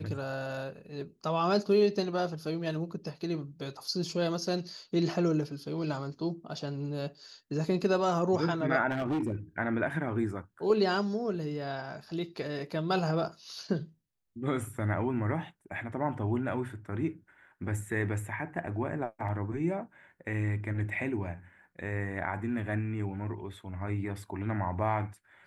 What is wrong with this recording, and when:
8.9–9.35 clipped -27 dBFS

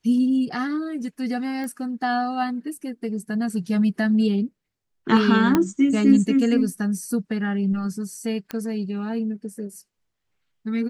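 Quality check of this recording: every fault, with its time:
1.64 pop -22 dBFS
5.55 pop -6 dBFS
8.51 pop -15 dBFS

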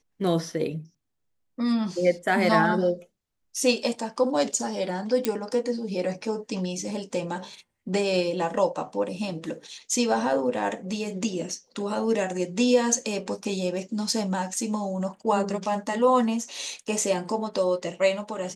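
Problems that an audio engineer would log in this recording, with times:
5.25 pop -8 dBFS

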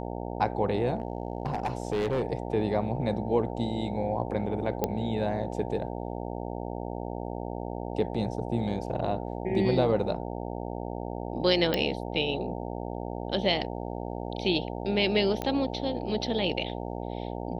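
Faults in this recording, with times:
buzz 60 Hz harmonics 15 -35 dBFS
0.97–2.25 clipped -23.5 dBFS
4.84 pop -12 dBFS
11.74 pop -13 dBFS
15.42 pop -17 dBFS

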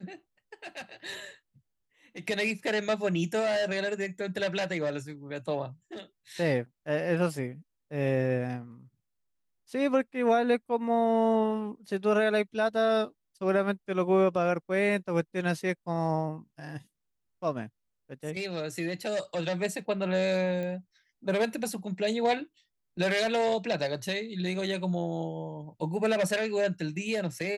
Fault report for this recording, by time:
20.63 pop -25 dBFS

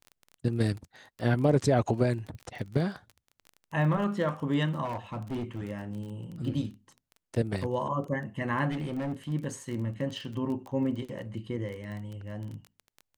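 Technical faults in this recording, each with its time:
crackle 18/s -36 dBFS
4.84–5.71 clipped -29.5 dBFS
8.71–9.32 clipped -28.5 dBFS
10.71–10.72 gap 6.2 ms

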